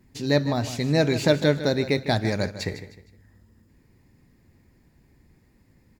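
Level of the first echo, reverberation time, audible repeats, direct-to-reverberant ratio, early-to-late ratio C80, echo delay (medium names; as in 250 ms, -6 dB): -13.0 dB, no reverb, 3, no reverb, no reverb, 154 ms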